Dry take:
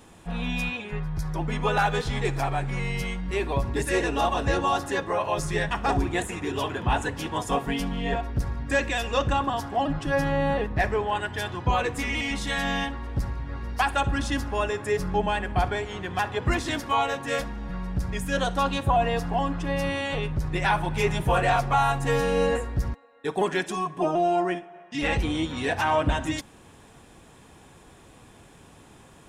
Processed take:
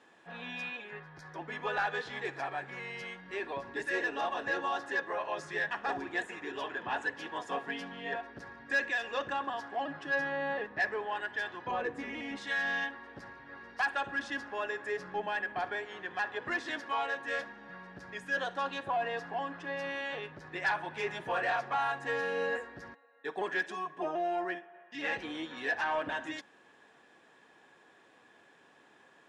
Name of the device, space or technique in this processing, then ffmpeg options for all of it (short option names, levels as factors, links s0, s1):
intercom: -filter_complex "[0:a]highpass=340,lowpass=4700,equalizer=f=1700:t=o:w=0.2:g=11.5,asoftclip=type=tanh:threshold=0.211,asettb=1/sr,asplit=3[s0][s1][s2];[s0]atrim=end=11.714[s3];[s1]atrim=start=11.71:end=12.37,asetpts=PTS-STARTPTS,afade=t=in:d=0.004:c=qsin,afade=t=out:st=0.656:d=0.004:c=qsin,tiltshelf=f=800:g=7.5[s4];[s2]atrim=start=12.366[s5];[s3][s4]acrossfade=d=0.004:c1=hsin:c2=qsin[s6];[s6][s5]acrossfade=d=0.004:c1=qsin:c2=hsin,volume=0.376"